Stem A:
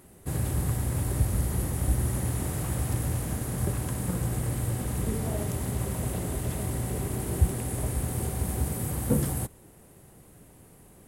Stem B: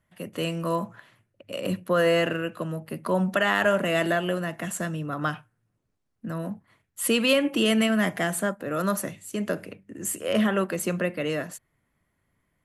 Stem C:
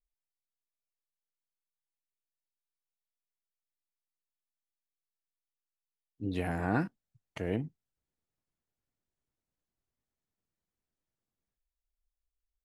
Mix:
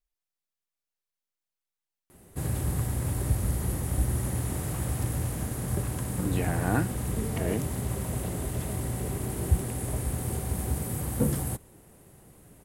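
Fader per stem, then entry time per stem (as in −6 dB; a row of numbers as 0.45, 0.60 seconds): −1.0 dB, muted, +2.5 dB; 2.10 s, muted, 0.00 s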